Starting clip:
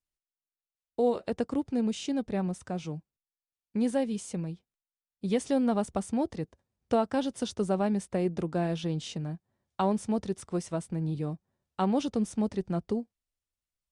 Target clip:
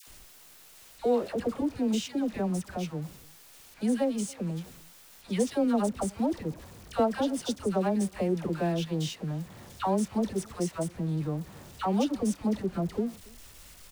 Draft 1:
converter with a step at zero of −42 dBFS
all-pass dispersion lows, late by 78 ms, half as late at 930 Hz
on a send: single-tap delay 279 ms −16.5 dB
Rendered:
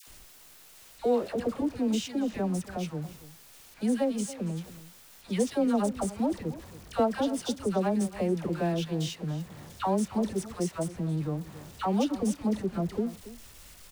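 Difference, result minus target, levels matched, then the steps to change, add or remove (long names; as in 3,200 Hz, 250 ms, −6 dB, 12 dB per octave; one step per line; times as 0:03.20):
echo-to-direct +9.5 dB
change: single-tap delay 279 ms −26 dB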